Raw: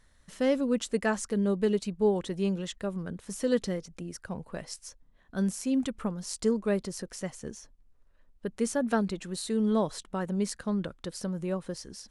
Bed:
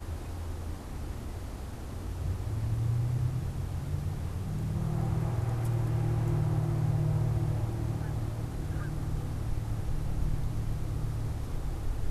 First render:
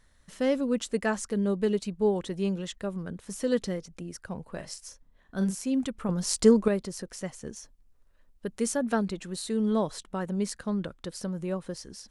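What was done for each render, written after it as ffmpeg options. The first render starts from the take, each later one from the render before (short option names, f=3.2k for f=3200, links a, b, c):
-filter_complex "[0:a]asettb=1/sr,asplit=3[a][b][c];[a]atrim=end=4.544[d];[b]atrim=start=4.54:end=5.55,asetpts=PTS-STARTPTS,afade=t=in:d=0.004:c=qsin,afade=t=out:st=1.006:d=0.004:c=qsin,asplit=2[e][f];[f]adelay=42,volume=-8dB[g];[e][g]amix=inputs=2:normalize=0,atrim=end_sample=44541[h];[c]atrim=start=5.546[i];[d][h]acrossfade=d=0.004:c1=hsin:c2=qsin[j];[j][i]acrossfade=d=0.004:c1=qsin:c2=hsin,asettb=1/sr,asplit=3[k][l][m];[k]atrim=end=7.564[n];[l]atrim=start=7.56:end=8.77,asetpts=PTS-STARTPTS,afade=t=in:d=0.004:c=qsin,afade=t=out:st=1.206:d=0.004:c=qsin,highshelf=f=4.3k:g=5.5[o];[m]atrim=start=8.766[p];[n][o]acrossfade=d=0.004:c1=hsin:c2=qsin[q];[q][p]acrossfade=d=0.004:c1=qsin:c2=hsin,asplit=3[r][s][t];[r]atrim=end=6.092[u];[s]atrim=start=6.088:end=6.682,asetpts=PTS-STARTPTS,volume=8dB[v];[t]atrim=start=6.678[w];[u][v]acrossfade=d=0.004:c1=hsin:c2=hsin[x];[x][w]acrossfade=d=0.004:c1=hsin:c2=hsin"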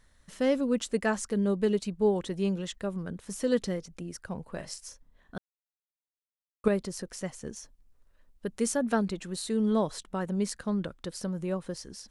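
-filter_complex "[0:a]asplit=3[a][b][c];[a]atrim=end=5.38,asetpts=PTS-STARTPTS,afade=t=out:st=5.376:d=0.004:c=hsin[d];[b]atrim=start=5.38:end=6.64,asetpts=PTS-STARTPTS,volume=0[e];[c]atrim=start=6.64,asetpts=PTS-STARTPTS,afade=t=in:d=0.004:c=hsin[f];[d][e][f]concat=n=3:v=0:a=1"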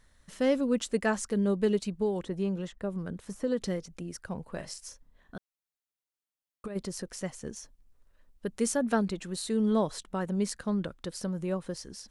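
-filter_complex "[0:a]asettb=1/sr,asplit=3[a][b][c];[a]atrim=end=1.954[d];[b]atrim=start=1.95:end=3.61,asetpts=PTS-STARTPTS,afade=t=in:d=0.004:c=qsin,afade=t=out:st=1.656:d=0.004:c=qsin,acrossover=split=810|1700[e][f][g];[e]acompressor=threshold=-26dB:ratio=4[h];[f]acompressor=threshold=-46dB:ratio=4[i];[g]acompressor=threshold=-53dB:ratio=4[j];[h][i][j]amix=inputs=3:normalize=0[k];[c]atrim=start=3.606[l];[d][k]acrossfade=d=0.004:c1=hsin:c2=qsin[m];[m][l]acrossfade=d=0.004:c1=qsin:c2=hsin,asplit=3[n][o][p];[n]afade=t=out:st=4.65:d=0.02[q];[o]acompressor=threshold=-35dB:ratio=6:attack=3.2:release=140:knee=1:detection=peak,afade=t=in:st=4.65:d=0.02,afade=t=out:st=6.75:d=0.02[r];[p]afade=t=in:st=6.75:d=0.02[s];[q][r][s]amix=inputs=3:normalize=0"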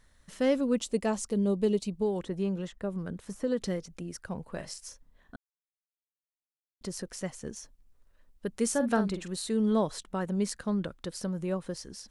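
-filter_complex "[0:a]asettb=1/sr,asplit=3[a][b][c];[a]atrim=end=0.774[d];[b]atrim=start=0.77:end=2.02,asetpts=PTS-STARTPTS,afade=t=in:d=0.004:c=qsin,afade=t=out:st=1.246:d=0.004:c=qsin,equalizer=f=1.6k:w=1.9:g=-11[e];[c]atrim=start=2.016[f];[d][e]acrossfade=d=0.004:c1=hsin:c2=qsin[g];[g][f]acrossfade=d=0.004:c1=qsin:c2=hsin,asettb=1/sr,asplit=3[h][i][j];[h]atrim=end=8.684[k];[i]atrim=start=8.68:end=9.28,asetpts=PTS-STARTPTS,afade=t=in:d=0.004:c=qsin,afade=t=out:st=0.596:d=0.004:c=qsin,asplit=2[l][m];[m]adelay=46,volume=-9.5dB[n];[l][n]amix=inputs=2:normalize=0,atrim=end_sample=26460[o];[j]atrim=start=9.276[p];[k][o]acrossfade=d=0.004:c1=hsin:c2=qsin[q];[q][p]acrossfade=d=0.004:c1=qsin:c2=hsin,asplit=3[r][s][t];[r]atrim=end=5.36,asetpts=PTS-STARTPTS,afade=t=out:st=5.356:d=0.004:c=hsin[u];[s]atrim=start=5.36:end=6.81,asetpts=PTS-STARTPTS,volume=0[v];[t]atrim=start=6.81,asetpts=PTS-STARTPTS,afade=t=in:d=0.004:c=hsin[w];[u][v][w]concat=n=3:v=0:a=1"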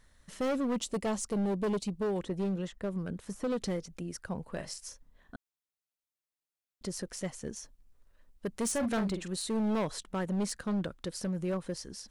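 -af "asoftclip=type=hard:threshold=-27.5dB"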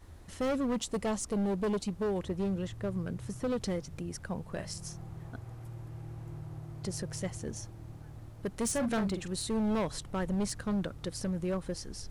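-filter_complex "[1:a]volume=-14.5dB[a];[0:a][a]amix=inputs=2:normalize=0"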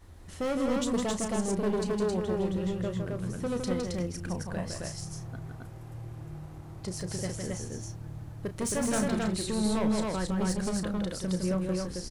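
-filter_complex "[0:a]asplit=2[a][b];[b]adelay=33,volume=-10.5dB[c];[a][c]amix=inputs=2:normalize=0,aecho=1:1:160.3|268.2:0.562|0.794"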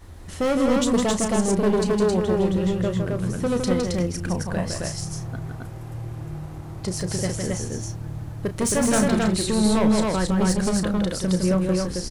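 -af "volume=8.5dB"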